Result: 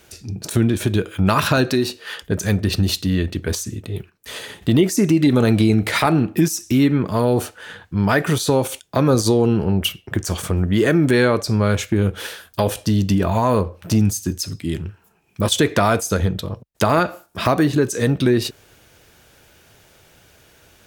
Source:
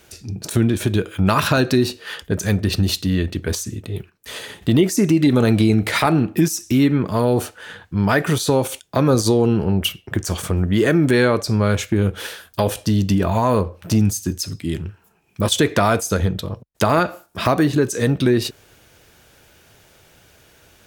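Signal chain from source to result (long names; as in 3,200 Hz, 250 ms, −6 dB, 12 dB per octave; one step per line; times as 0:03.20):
0:01.70–0:02.24: low-shelf EQ 200 Hz −7.5 dB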